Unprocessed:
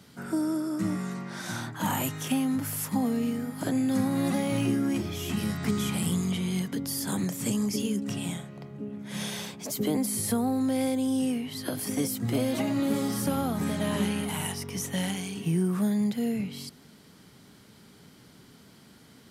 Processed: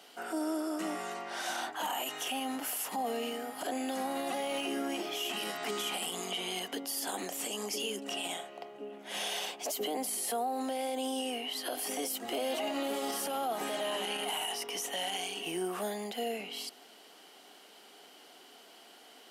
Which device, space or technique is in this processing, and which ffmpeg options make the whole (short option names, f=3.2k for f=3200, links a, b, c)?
laptop speaker: -af "highpass=f=350:w=0.5412,highpass=f=350:w=1.3066,equalizer=f=730:t=o:w=0.31:g=11.5,equalizer=f=2.9k:t=o:w=0.24:g=11,alimiter=level_in=2dB:limit=-24dB:level=0:latency=1:release=35,volume=-2dB"